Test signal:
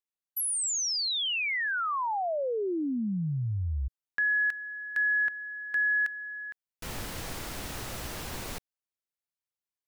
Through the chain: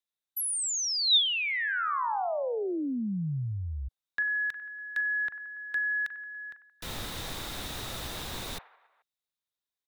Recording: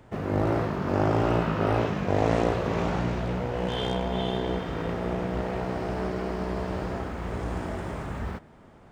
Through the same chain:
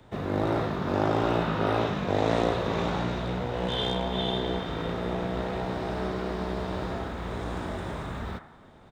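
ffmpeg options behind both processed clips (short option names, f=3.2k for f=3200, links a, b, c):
-filter_complex "[0:a]equalizer=f=3.7k:w=5.7:g=12,acrossover=split=150|730|1900[a][b][c][d];[a]alimiter=level_in=7dB:limit=-24dB:level=0:latency=1:release=35,volume=-7dB[e];[c]aecho=1:1:40|96|174.4|284.2|437.8:0.631|0.398|0.251|0.158|0.1[f];[e][b][f][d]amix=inputs=4:normalize=0,volume=-1dB"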